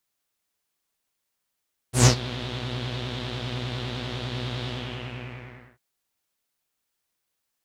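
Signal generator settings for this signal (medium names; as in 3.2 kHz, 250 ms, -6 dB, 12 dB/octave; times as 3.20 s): synth patch with pulse-width modulation B2, detune 17 cents, sub -12.5 dB, noise -5 dB, filter lowpass, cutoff 1.8 kHz, Q 3.7, filter envelope 2.5 oct, attack 130 ms, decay 0.09 s, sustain -17.5 dB, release 1.11 s, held 2.74 s, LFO 10 Hz, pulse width 29%, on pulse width 19%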